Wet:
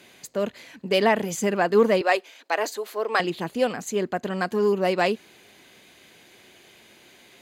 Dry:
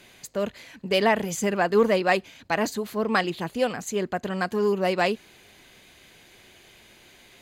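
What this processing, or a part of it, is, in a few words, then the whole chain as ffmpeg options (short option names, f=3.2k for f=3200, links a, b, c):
filter by subtraction: -filter_complex "[0:a]asplit=2[a][b];[b]lowpass=260,volume=-1[c];[a][c]amix=inputs=2:normalize=0,asettb=1/sr,asplit=3[d][e][f];[d]atrim=end=2.014[g];[e]atrim=start=2.01:end=3.2,asetpts=PTS-STARTPTS,afade=t=in:d=0.004:c=qsin,afade=t=out:st=1.186:d=0.004:c=qsin,highpass=f=390:w=0.5412,highpass=f=390:w=1.3066[h];[f]atrim=start=3.196[i];[g][h]acrossfade=d=0.004:c1=hsin:c2=qsin[j];[j][i]acrossfade=d=0.004:c1=qsin:c2=hsin"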